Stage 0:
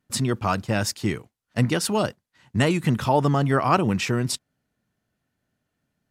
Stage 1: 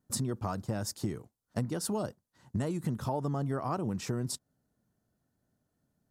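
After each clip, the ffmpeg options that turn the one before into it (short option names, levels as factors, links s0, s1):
-af "equalizer=f=2500:t=o:w=1.4:g=-14.5,acompressor=threshold=0.0316:ratio=6"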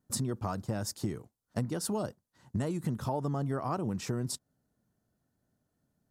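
-af anull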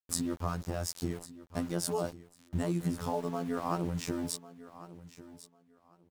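-af "afftfilt=real='hypot(re,im)*cos(PI*b)':imag='0':win_size=2048:overlap=0.75,aeval=exprs='val(0)*gte(abs(val(0)),0.00355)':c=same,aecho=1:1:1098|2196:0.15|0.0299,volume=1.58"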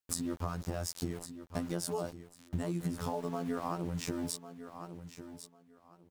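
-af "acompressor=threshold=0.02:ratio=6,volume=1.41"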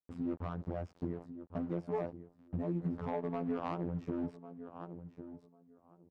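-af "asoftclip=type=hard:threshold=0.0447,lowshelf=f=94:g=-9.5,adynamicsmooth=sensitivity=2:basefreq=690,volume=1.26"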